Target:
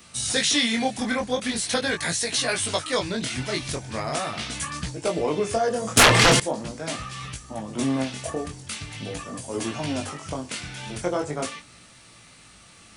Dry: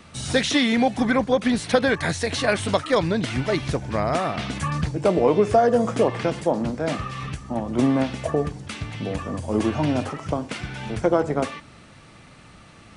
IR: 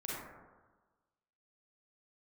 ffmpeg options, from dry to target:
-filter_complex "[0:a]flanger=delay=16.5:depth=7.6:speed=0.42,asettb=1/sr,asplit=3[link_01][link_02][link_03];[link_01]atrim=end=5.974[link_04];[link_02]atrim=start=5.97:end=6.4,asetpts=PTS-STARTPTS,afade=type=in:duration=0.004:curve=qsin,afade=type=out:start_time=0.426:duration=0.004:curve=qsin,aeval=exprs='0.335*sin(PI/2*5.62*val(0)/0.335)':channel_layout=same[link_05];[link_03]atrim=start=6.396[link_06];[link_04][link_05]acrossfade=duration=0.004:curve1=hsin:curve2=qsin[link_07];[link_07][link_06]acrossfade=duration=0.004:curve1=qsin:curve2=hsin,crystalizer=i=5:c=0,volume=-4dB"

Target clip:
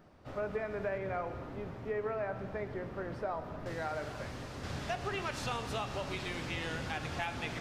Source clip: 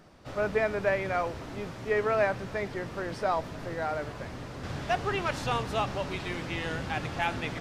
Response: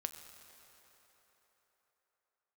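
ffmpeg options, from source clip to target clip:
-filter_complex "[0:a]asetnsamples=nb_out_samples=441:pad=0,asendcmd='0.98 equalizer g -14;3.66 equalizer g 4',equalizer=frequency=7700:width=0.34:gain=-8,acompressor=threshold=-29dB:ratio=6[link_01];[1:a]atrim=start_sample=2205,afade=type=out:start_time=0.36:duration=0.01,atrim=end_sample=16317[link_02];[link_01][link_02]afir=irnorm=-1:irlink=0,volume=-2dB"

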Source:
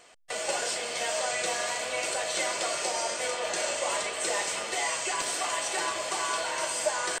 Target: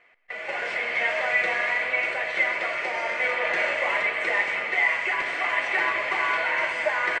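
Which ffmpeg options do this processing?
ffmpeg -i in.wav -af "lowpass=frequency=2100:width_type=q:width=5.2,aecho=1:1:125|250|375|500|625:0.2|0.102|0.0519|0.0265|0.0135,dynaudnorm=framelen=170:gausssize=7:maxgain=11.5dB,volume=-8.5dB" out.wav

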